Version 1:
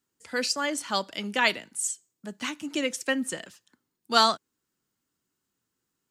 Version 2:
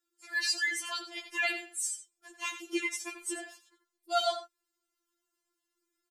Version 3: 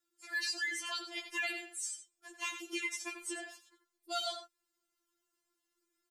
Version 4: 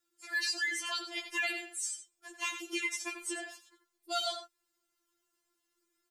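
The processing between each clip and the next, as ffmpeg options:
ffmpeg -i in.wav -filter_complex "[0:a]alimiter=limit=-16dB:level=0:latency=1:release=68,asplit=2[link_01][link_02];[link_02]adelay=87.46,volume=-10dB,highshelf=frequency=4000:gain=-1.97[link_03];[link_01][link_03]amix=inputs=2:normalize=0,afftfilt=real='re*4*eq(mod(b,16),0)':imag='im*4*eq(mod(b,16),0)':win_size=2048:overlap=0.75" out.wav
ffmpeg -i in.wav -filter_complex "[0:a]acrossover=split=360|1600|7200[link_01][link_02][link_03][link_04];[link_01]acompressor=threshold=-50dB:ratio=4[link_05];[link_02]acompressor=threshold=-44dB:ratio=4[link_06];[link_03]acompressor=threshold=-36dB:ratio=4[link_07];[link_04]acompressor=threshold=-50dB:ratio=4[link_08];[link_05][link_06][link_07][link_08]amix=inputs=4:normalize=0" out.wav
ffmpeg -i in.wav -af "equalizer=frequency=230:width=4.2:gain=-5.5,volume=3dB" out.wav

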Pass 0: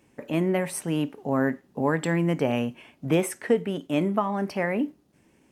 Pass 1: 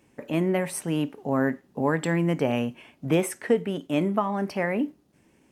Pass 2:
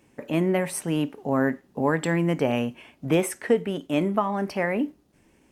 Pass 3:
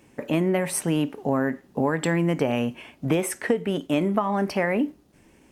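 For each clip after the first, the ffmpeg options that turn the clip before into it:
ffmpeg -i in.wav -af anull out.wav
ffmpeg -i in.wav -af "asubboost=boost=3:cutoff=64,volume=1.5dB" out.wav
ffmpeg -i in.wav -af "acompressor=threshold=-23dB:ratio=6,volume=4.5dB" out.wav

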